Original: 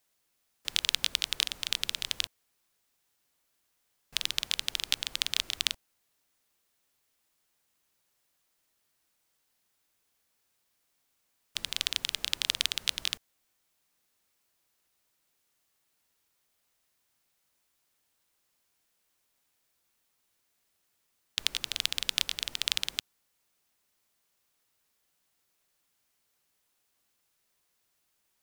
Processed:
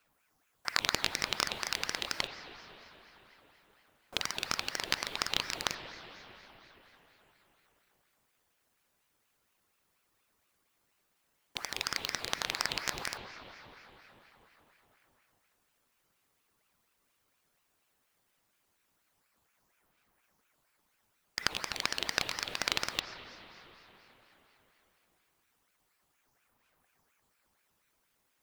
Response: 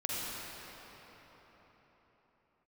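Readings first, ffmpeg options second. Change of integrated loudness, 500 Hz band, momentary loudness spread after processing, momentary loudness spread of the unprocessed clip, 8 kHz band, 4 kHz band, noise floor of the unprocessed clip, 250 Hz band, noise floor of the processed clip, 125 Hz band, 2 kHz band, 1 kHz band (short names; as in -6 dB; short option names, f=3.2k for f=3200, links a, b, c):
-3.0 dB, +11.5 dB, 18 LU, 7 LU, -3.0 dB, -5.5 dB, -76 dBFS, +9.0 dB, -77 dBFS, +5.5 dB, +2.0 dB, +10.0 dB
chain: -filter_complex "[0:a]equalizer=f=460:t=o:w=1.7:g=11.5,aphaser=in_gain=1:out_gain=1:delay=1.4:decay=0.47:speed=0.15:type=triangular,aeval=exprs='clip(val(0),-1,0.178)':c=same,asplit=2[a][b];[1:a]atrim=start_sample=2205,lowpass=2.4k[c];[b][c]afir=irnorm=-1:irlink=0,volume=-9dB[d];[a][d]amix=inputs=2:normalize=0,aeval=exprs='val(0)*sin(2*PI*1200*n/s+1200*0.7/4.2*sin(2*PI*4.2*n/s))':c=same"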